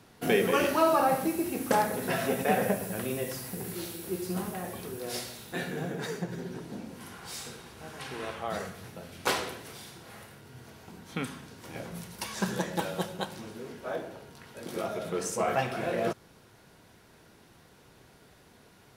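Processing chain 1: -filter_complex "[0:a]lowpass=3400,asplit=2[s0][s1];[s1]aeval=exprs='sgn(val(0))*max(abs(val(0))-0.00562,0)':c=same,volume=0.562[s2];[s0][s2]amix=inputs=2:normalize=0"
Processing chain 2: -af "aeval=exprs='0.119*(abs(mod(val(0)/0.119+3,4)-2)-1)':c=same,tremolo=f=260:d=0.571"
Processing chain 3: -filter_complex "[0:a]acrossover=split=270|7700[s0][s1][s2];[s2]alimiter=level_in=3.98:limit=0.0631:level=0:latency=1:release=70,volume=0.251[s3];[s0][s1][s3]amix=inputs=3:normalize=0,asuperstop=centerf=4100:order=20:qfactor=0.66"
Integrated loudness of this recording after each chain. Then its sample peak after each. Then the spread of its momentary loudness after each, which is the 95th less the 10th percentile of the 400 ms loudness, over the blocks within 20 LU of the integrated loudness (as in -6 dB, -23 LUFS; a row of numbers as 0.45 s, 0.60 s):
-28.5 LUFS, -35.0 LUFS, -32.0 LUFS; -8.0 dBFS, -18.5 dBFS, -12.0 dBFS; 20 LU, 18 LU, 19 LU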